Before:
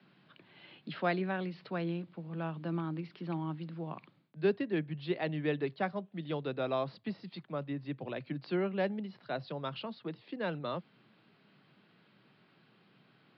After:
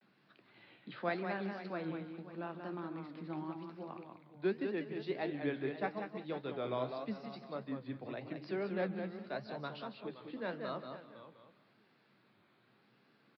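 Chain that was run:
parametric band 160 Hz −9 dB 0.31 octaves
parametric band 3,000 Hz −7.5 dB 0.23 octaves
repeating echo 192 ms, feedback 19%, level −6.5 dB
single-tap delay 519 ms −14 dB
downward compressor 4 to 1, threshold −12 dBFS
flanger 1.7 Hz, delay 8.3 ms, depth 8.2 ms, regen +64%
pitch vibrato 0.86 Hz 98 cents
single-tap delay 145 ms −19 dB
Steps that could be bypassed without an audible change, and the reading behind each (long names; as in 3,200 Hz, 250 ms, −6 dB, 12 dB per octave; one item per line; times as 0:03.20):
downward compressor, threshold −12 dBFS: peak of its input −18.0 dBFS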